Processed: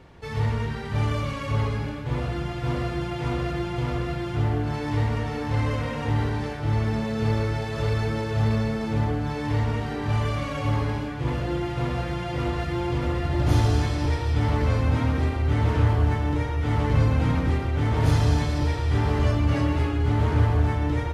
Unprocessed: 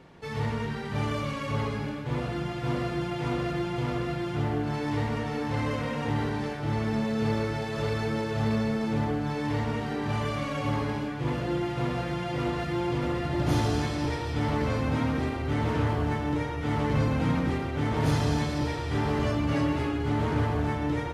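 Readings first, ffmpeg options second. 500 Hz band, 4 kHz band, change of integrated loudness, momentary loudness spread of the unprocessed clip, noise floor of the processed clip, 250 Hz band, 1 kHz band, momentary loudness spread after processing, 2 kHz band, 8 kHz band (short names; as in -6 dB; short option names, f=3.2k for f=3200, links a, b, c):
+1.0 dB, +1.5 dB, +4.0 dB, 5 LU, -31 dBFS, +0.5 dB, +1.5 dB, 7 LU, +1.5 dB, +1.5 dB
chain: -af "lowshelf=f=120:t=q:w=1.5:g=7.5,volume=1.5dB"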